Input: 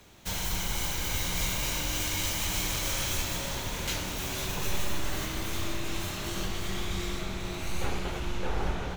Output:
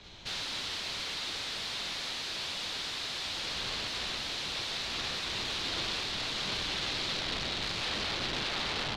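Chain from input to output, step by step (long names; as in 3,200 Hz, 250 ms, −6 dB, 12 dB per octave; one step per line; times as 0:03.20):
backwards echo 227 ms −22.5 dB
wrap-around overflow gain 31 dB
low-pass with resonance 4,000 Hz, resonance Q 2.6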